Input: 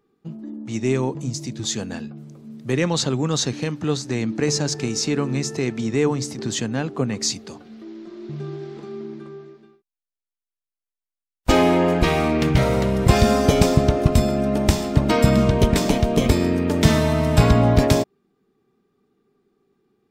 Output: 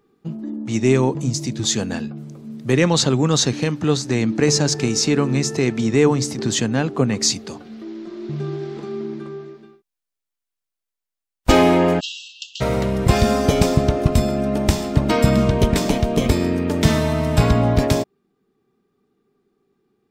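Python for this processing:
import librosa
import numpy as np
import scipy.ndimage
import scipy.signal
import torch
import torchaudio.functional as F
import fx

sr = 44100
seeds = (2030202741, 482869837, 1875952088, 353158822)

y = fx.rider(x, sr, range_db=4, speed_s=2.0)
y = fx.brickwall_bandpass(y, sr, low_hz=2600.0, high_hz=7800.0, at=(11.99, 12.6), fade=0.02)
y = F.gain(torch.from_numpy(y), 1.5).numpy()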